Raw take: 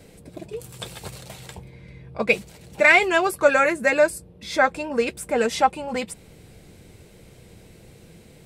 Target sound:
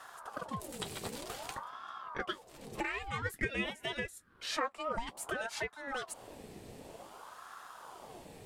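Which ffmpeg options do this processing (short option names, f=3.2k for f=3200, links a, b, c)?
-filter_complex "[0:a]acompressor=threshold=-32dB:ratio=12,asettb=1/sr,asplit=3[a][b][c];[a]atrim=end=3.224[d];[b]atrim=start=3.22:end=4.97,asetpts=PTS-STARTPTS,afade=t=in:d=0.004:c=qsin,afade=t=out:st=1.746:d=0.004:c=qsin,highpass=f=910:t=q:w=4.9[e];[c]atrim=start=4.966[f];[d][e]acrossfade=d=0.004:c1=hsin:c2=qsin[g];[g][f]acrossfade=d=0.004:c1=qsin:c2=hsin,aeval=exprs='val(0)*sin(2*PI*750*n/s+750*0.65/0.53*sin(2*PI*0.53*n/s))':c=same"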